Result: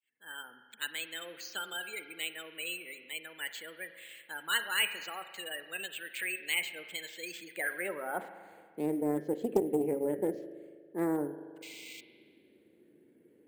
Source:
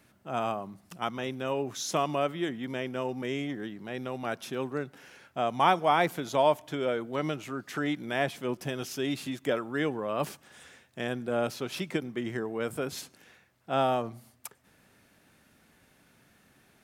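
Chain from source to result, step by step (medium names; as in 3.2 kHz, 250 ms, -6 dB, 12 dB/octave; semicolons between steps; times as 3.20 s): fade-in on the opening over 0.68 s; de-hum 109 Hz, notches 19; spectral gate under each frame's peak -20 dB strong; high-order bell 730 Hz -11.5 dB 1.1 oct; tape speed +25%; painted sound noise, 11.62–12.01 s, 2–6.2 kHz -28 dBFS; band-pass sweep 2.7 kHz -> 370 Hz, 7.22–8.82 s; careless resampling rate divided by 4×, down filtered, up hold; spring tank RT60 1.9 s, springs 40 ms, chirp 30 ms, DRR 10.5 dB; loudspeaker Doppler distortion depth 0.28 ms; trim +7.5 dB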